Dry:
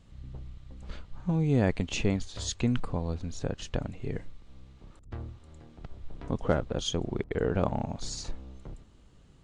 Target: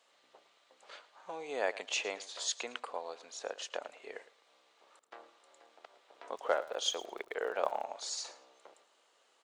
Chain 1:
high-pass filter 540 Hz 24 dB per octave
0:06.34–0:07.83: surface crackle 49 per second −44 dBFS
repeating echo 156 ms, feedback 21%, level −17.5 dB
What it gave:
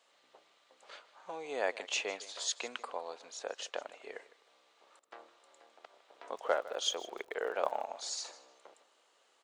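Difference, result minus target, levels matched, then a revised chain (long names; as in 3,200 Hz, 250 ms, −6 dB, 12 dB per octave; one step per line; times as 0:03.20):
echo 46 ms late
high-pass filter 540 Hz 24 dB per octave
0:06.34–0:07.83: surface crackle 49 per second −44 dBFS
repeating echo 110 ms, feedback 21%, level −17.5 dB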